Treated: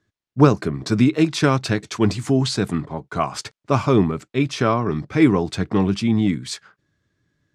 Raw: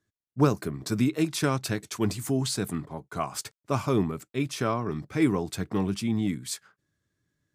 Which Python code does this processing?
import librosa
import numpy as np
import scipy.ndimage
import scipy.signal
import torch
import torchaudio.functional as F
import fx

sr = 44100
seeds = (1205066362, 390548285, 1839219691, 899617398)

y = scipy.signal.sosfilt(scipy.signal.butter(2, 5300.0, 'lowpass', fs=sr, output='sos'), x)
y = F.gain(torch.from_numpy(y), 8.5).numpy()